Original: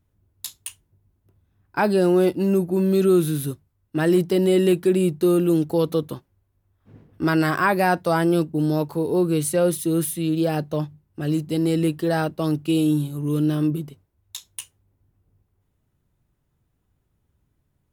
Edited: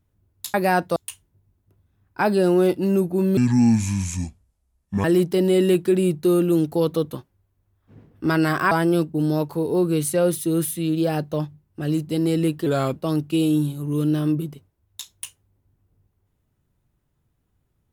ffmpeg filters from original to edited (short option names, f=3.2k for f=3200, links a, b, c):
-filter_complex "[0:a]asplit=8[a][b][c][d][e][f][g][h];[a]atrim=end=0.542[i];[b]atrim=start=7.688:end=8.112[j];[c]atrim=start=0.538:end=2.954[k];[d]atrim=start=2.95:end=4.02,asetpts=PTS-STARTPTS,asetrate=28224,aresample=44100[l];[e]atrim=start=4.016:end=7.692[m];[f]atrim=start=8.108:end=12.064[n];[g]atrim=start=12.06:end=12.31,asetpts=PTS-STARTPTS,asetrate=37485,aresample=44100[o];[h]atrim=start=12.306[p];[i][j]acrossfade=d=0.004:c1=hsin:c2=hsin[q];[q][k]acrossfade=d=0.004:c1=hsin:c2=hsin[r];[r][l]acrossfade=d=0.004:c1=hsin:c2=hsin[s];[s][m]acrossfade=d=0.004:c1=hsin:c2=hsin[t];[t][n]acrossfade=d=0.004:c1=hsin:c2=hsin[u];[u][o]acrossfade=d=0.004:c1=hsin:c2=hsin[v];[v][p]acrossfade=d=0.004:c1=hsin:c2=hsin"